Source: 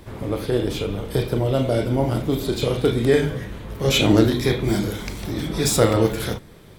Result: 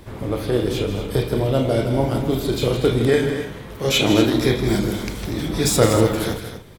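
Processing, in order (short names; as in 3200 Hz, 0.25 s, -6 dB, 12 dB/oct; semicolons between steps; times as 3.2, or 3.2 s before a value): 3.08–4.35 low shelf 160 Hz -8.5 dB; loudspeakers at several distances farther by 55 m -10 dB, 83 m -11 dB; gain +1 dB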